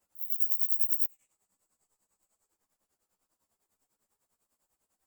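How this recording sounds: tremolo triangle 10 Hz, depth 100%; a shimmering, thickened sound

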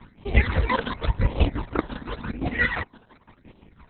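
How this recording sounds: aliases and images of a low sample rate 7400 Hz, jitter 0%; chopped level 5.8 Hz, depth 60%, duty 40%; phasing stages 12, 0.91 Hz, lowest notch 110–1600 Hz; Opus

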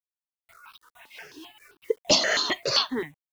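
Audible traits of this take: a quantiser's noise floor 10-bit, dither none; tremolo triangle 4.4 Hz, depth 60%; notches that jump at a steady rate 7.6 Hz 450–2000 Hz

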